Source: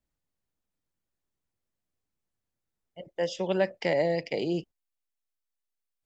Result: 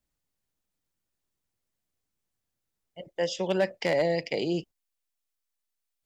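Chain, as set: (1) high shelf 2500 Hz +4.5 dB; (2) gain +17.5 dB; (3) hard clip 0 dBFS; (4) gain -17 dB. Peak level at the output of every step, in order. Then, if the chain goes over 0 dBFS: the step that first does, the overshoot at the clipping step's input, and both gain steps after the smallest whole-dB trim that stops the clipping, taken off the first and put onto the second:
-11.5, +6.0, 0.0, -17.0 dBFS; step 2, 6.0 dB; step 2 +11.5 dB, step 4 -11 dB

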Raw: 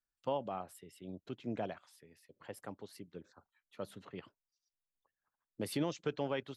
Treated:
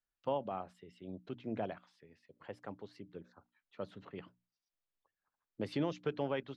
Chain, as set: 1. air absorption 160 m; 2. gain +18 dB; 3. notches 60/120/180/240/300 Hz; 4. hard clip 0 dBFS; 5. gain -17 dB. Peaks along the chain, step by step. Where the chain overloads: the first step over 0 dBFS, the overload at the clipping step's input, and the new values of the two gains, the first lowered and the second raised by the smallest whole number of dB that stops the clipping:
-23.5, -5.5, -5.5, -5.5, -22.5 dBFS; no overload

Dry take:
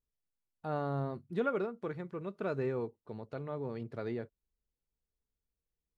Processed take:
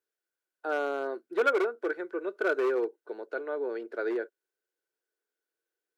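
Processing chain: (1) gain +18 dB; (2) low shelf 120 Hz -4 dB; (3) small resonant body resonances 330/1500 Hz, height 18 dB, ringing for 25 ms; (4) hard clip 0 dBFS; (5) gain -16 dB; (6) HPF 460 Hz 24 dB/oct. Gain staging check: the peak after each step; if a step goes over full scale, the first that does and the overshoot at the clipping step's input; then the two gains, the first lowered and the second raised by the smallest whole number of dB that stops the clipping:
-3.5, -3.5, +6.0, 0.0, -16.0, -13.0 dBFS; step 3, 6.0 dB; step 1 +12 dB, step 5 -10 dB

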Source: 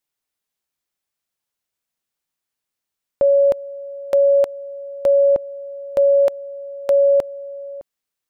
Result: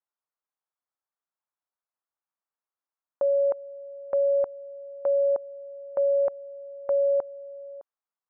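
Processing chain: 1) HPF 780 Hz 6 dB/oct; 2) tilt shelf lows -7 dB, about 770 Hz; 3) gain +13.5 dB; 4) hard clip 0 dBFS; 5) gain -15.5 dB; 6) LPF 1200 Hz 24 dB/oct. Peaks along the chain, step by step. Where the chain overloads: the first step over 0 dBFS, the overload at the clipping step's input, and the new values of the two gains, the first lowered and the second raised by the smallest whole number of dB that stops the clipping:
-11.5, -5.0, +8.5, 0.0, -15.5, -18.0 dBFS; step 3, 8.5 dB; step 3 +4.5 dB, step 5 -6.5 dB

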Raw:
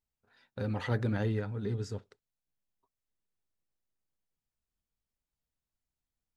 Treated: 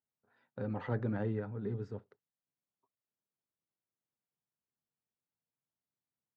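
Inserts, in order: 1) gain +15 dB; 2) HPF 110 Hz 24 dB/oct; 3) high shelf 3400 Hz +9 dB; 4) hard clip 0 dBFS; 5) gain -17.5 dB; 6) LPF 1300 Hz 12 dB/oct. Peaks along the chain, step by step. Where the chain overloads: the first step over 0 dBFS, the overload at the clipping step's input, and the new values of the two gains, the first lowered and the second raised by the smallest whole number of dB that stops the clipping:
-2.5, -3.5, -3.0, -3.0, -20.5, -22.0 dBFS; no overload

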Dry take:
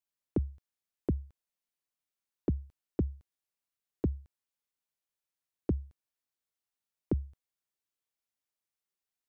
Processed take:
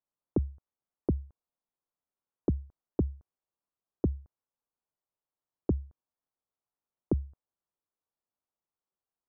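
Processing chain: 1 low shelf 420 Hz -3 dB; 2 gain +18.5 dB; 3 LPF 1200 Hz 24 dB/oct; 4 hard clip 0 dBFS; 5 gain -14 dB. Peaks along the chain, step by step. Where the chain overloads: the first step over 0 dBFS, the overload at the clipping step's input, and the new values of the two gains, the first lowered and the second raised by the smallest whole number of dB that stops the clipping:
-21.5, -3.0, -3.0, -3.0, -17.0 dBFS; no overload

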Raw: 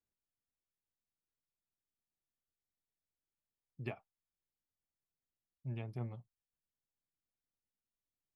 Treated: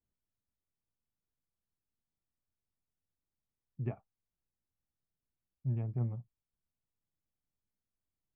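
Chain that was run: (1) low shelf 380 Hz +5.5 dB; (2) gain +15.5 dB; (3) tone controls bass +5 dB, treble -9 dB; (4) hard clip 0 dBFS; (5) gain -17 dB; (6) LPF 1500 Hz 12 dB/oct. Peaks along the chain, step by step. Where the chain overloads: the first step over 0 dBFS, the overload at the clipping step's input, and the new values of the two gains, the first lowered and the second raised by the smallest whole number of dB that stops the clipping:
-22.5, -7.0, -5.5, -5.5, -22.5, -23.0 dBFS; no overload

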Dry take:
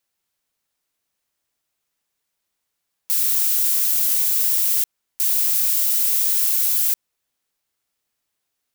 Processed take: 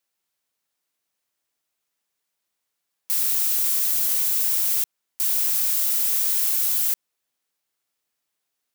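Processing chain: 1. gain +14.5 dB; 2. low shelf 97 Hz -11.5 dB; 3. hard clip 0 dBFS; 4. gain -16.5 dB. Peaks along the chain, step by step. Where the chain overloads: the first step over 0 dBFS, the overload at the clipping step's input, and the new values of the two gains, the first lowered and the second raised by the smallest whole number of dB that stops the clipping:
+9.5, +9.5, 0.0, -16.5 dBFS; step 1, 9.5 dB; step 1 +4.5 dB, step 4 -6.5 dB

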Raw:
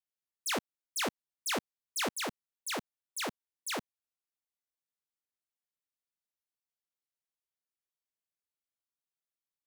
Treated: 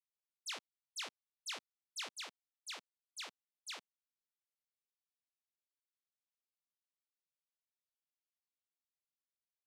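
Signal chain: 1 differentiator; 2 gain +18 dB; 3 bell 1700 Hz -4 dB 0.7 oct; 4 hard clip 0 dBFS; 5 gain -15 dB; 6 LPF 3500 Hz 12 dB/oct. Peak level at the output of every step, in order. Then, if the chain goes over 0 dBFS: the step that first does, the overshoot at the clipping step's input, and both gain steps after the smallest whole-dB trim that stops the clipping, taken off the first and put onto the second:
-22.5, -4.5, -5.0, -5.0, -20.0, -31.5 dBFS; no overload

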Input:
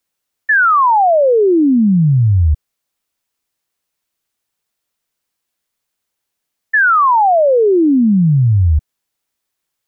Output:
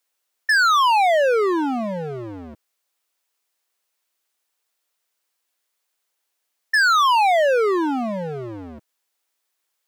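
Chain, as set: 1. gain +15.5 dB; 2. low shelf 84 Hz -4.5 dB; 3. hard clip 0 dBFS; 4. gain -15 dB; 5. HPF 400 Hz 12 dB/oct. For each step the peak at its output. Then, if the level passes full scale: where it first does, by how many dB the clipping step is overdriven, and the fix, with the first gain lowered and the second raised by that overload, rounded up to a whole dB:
+8.0, +8.0, 0.0, -15.0, -10.5 dBFS; step 1, 8.0 dB; step 1 +7.5 dB, step 4 -7 dB

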